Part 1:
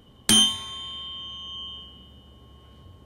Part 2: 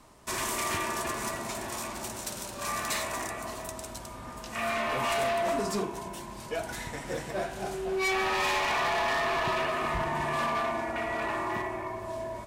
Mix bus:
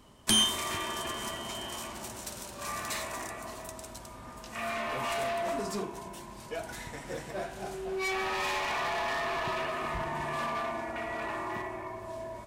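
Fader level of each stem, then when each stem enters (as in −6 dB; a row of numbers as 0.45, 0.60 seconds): −7.0, −4.0 decibels; 0.00, 0.00 seconds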